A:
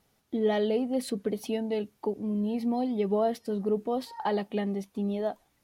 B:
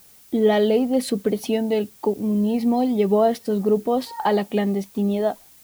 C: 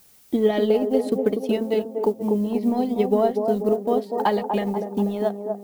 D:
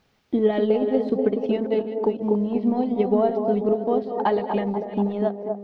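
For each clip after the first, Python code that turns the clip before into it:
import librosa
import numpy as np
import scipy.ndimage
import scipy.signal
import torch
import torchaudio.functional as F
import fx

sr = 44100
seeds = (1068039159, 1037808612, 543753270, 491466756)

y1 = fx.dmg_noise_colour(x, sr, seeds[0], colour='blue', level_db=-59.0)
y1 = F.gain(torch.from_numpy(y1), 8.5).numpy()
y2 = fx.transient(y1, sr, attack_db=5, sustain_db=-11)
y2 = fx.echo_wet_bandpass(y2, sr, ms=243, feedback_pct=50, hz=490.0, wet_db=-4.0)
y2 = F.gain(torch.from_numpy(y2), -3.5).numpy()
y3 = fx.reverse_delay(y2, sr, ms=366, wet_db=-10.5)
y3 = fx.air_absorb(y3, sr, metres=250.0)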